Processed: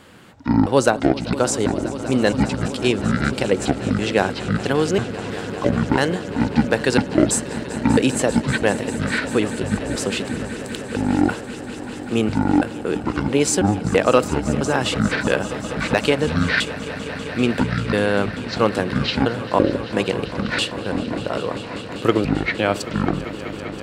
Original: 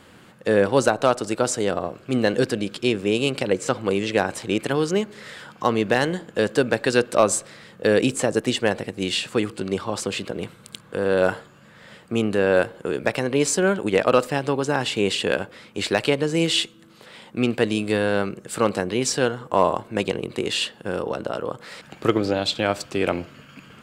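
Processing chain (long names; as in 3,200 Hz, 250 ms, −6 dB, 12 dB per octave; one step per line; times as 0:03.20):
pitch shifter gated in a rhythm −11 semitones, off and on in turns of 332 ms
echo that builds up and dies away 196 ms, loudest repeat 5, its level −17 dB
level +2.5 dB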